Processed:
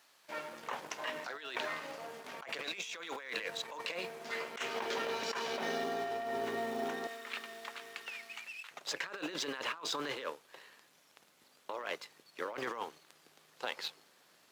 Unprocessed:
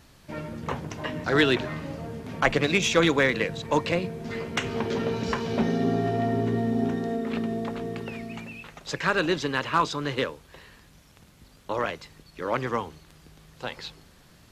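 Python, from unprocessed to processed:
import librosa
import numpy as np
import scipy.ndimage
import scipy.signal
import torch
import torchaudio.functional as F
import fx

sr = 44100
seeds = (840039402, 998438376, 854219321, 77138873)

y = fx.law_mismatch(x, sr, coded='A')
y = fx.highpass(y, sr, hz=fx.steps((0.0, 700.0), (7.07, 1500.0), (8.71, 440.0)), slope=12)
y = fx.over_compress(y, sr, threshold_db=-36.0, ratio=-1.0)
y = y * librosa.db_to_amplitude(-3.5)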